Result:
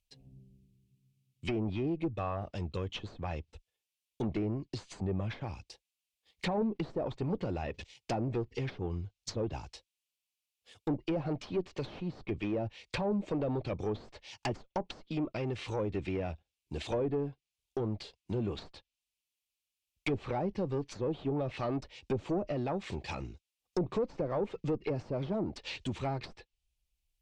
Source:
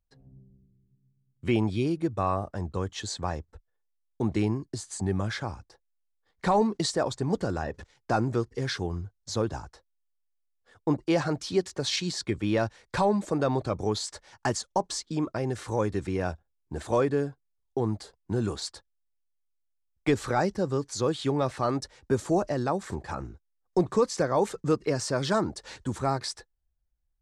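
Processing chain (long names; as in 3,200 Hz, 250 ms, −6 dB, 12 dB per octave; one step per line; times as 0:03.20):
high shelf with overshoot 2,000 Hz +9 dB, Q 3
tube saturation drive 23 dB, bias 0.3
treble cut that deepens with the level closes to 690 Hz, closed at −25.5 dBFS
level −2 dB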